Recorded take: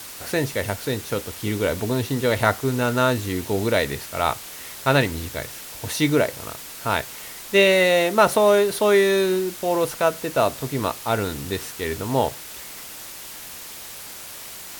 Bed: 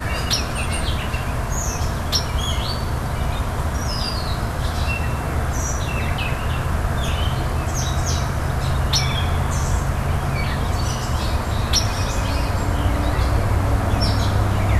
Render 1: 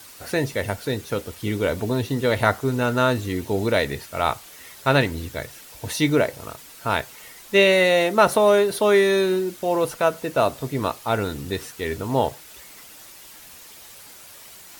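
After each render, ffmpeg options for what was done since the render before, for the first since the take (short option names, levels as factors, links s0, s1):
-af "afftdn=nr=8:nf=-38"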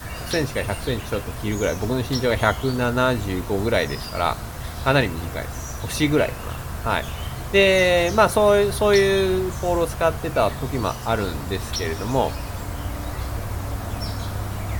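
-filter_complex "[1:a]volume=0.335[s0];[0:a][s0]amix=inputs=2:normalize=0"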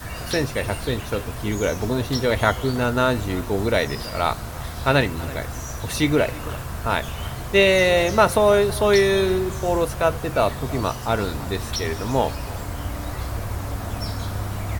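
-filter_complex "[0:a]asplit=2[s0][s1];[s1]adelay=326.5,volume=0.112,highshelf=f=4000:g=-7.35[s2];[s0][s2]amix=inputs=2:normalize=0"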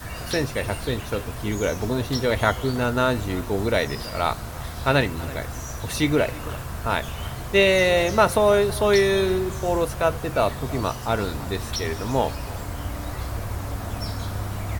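-af "volume=0.841"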